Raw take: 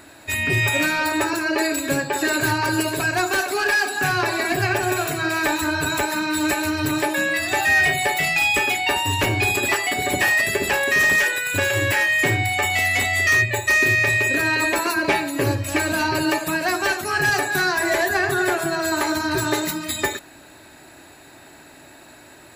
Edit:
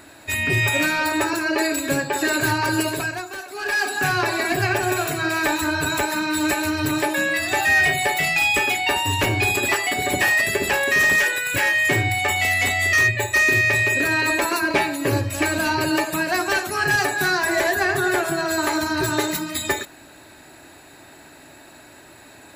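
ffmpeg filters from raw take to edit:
-filter_complex "[0:a]asplit=4[s0][s1][s2][s3];[s0]atrim=end=3.24,asetpts=PTS-STARTPTS,afade=t=out:st=2.9:d=0.34:silence=0.251189[s4];[s1]atrim=start=3.24:end=3.53,asetpts=PTS-STARTPTS,volume=0.251[s5];[s2]atrim=start=3.53:end=11.562,asetpts=PTS-STARTPTS,afade=t=in:d=0.34:silence=0.251189[s6];[s3]atrim=start=11.898[s7];[s4][s5][s6]concat=n=3:v=0:a=1[s8];[s8][s7]acrossfade=d=0.004:c1=hsin:c2=hsin"

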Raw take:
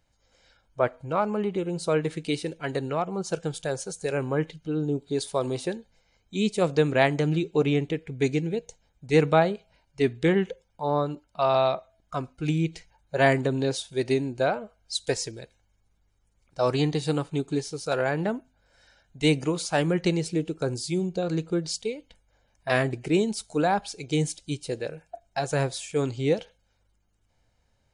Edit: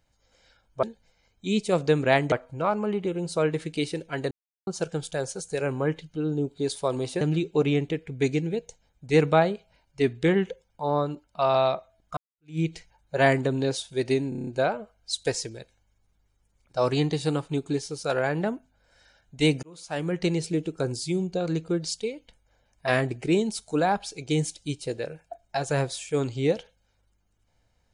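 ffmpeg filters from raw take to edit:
-filter_complex "[0:a]asplit=14[s0][s1][s2][s3][s4][s5][s6][s7][s8][s9][s10][s11][s12][s13];[s0]atrim=end=0.832[s14];[s1]atrim=start=5.718:end=7.212[s15];[s2]atrim=start=0.828:end=2.82,asetpts=PTS-STARTPTS,afade=t=out:st=1.988:d=0.004:c=hsin[s16];[s3]atrim=start=2.82:end=3.18,asetpts=PTS-STARTPTS,volume=0[s17];[s4]atrim=start=3.18:end=5.722,asetpts=PTS-STARTPTS,afade=t=in:d=0.004:c=hsin[s18];[s5]atrim=start=7.208:end=12.17,asetpts=PTS-STARTPTS,afade=t=out:st=4.958:d=0.004:c=hsin[s19];[s6]atrim=start=12.17:end=14.322,asetpts=PTS-STARTPTS,afade=t=in:d=0.42:c=exp[s20];[s7]atrim=start=14.288:end=14.322[s21];[s8]atrim=start=14.288:end=14.322[s22];[s9]atrim=start=14.288:end=14.322[s23];[s10]atrim=start=14.288:end=14.322[s24];[s11]atrim=start=14.288:end=14.322[s25];[s12]atrim=start=14.288:end=19.45,asetpts=PTS-STARTPTS,afade=t=out:st=5.158:d=0.004:c=hsin[s26];[s13]atrim=start=19.45,asetpts=PTS-STARTPTS,afade=t=in:d=0.72[s27];[s14][s15]acrossfade=d=0.004:c1=hsin:c2=hsin[s28];[s16][s17][s18]concat=n=3:v=0:a=1[s29];[s28][s29]acrossfade=d=0.004:c1=hsin:c2=hsin[s30];[s19][s20]concat=n=2:v=0:a=1[s31];[s30][s31]acrossfade=d=0.004:c1=hsin:c2=hsin[s32];[s32][s21]acrossfade=d=0.004:c1=hsin:c2=hsin[s33];[s33][s22]acrossfade=d=0.004:c1=hsin:c2=hsin[s34];[s34][s23]acrossfade=d=0.004:c1=hsin:c2=hsin[s35];[s35][s24]acrossfade=d=0.004:c1=hsin:c2=hsin[s36];[s36][s25]acrossfade=d=0.004:c1=hsin:c2=hsin[s37];[s26][s27]concat=n=2:v=0:a=1[s38];[s37][s38]acrossfade=d=0.004:c1=hsin:c2=hsin"

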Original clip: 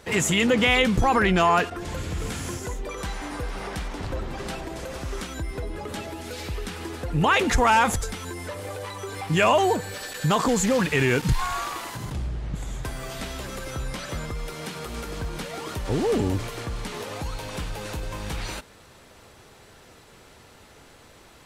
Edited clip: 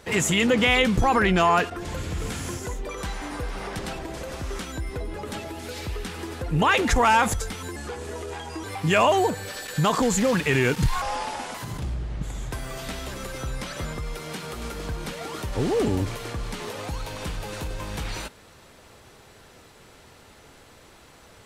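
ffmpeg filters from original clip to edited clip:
-filter_complex "[0:a]asplit=6[s0][s1][s2][s3][s4][s5];[s0]atrim=end=3.792[s6];[s1]atrim=start=4.408:end=8.384[s7];[s2]atrim=start=8.38:end=9.1,asetpts=PTS-STARTPTS,asetrate=36162,aresample=44100[s8];[s3]atrim=start=9.096:end=11.484[s9];[s4]atrim=start=11.48:end=11.87,asetpts=PTS-STARTPTS,asetrate=32634,aresample=44100[s10];[s5]atrim=start=11.866[s11];[s6][s7]acrossfade=d=0.004:c1=hsin:c2=hsin[s12];[s12][s8]acrossfade=d=0.004:c1=hsin:c2=hsin[s13];[s13][s9]acrossfade=d=0.004:c1=hsin:c2=hsin[s14];[s14][s10]acrossfade=d=0.004:c1=hsin:c2=hsin[s15];[s15][s11]acrossfade=d=0.004:c1=hsin:c2=hsin"

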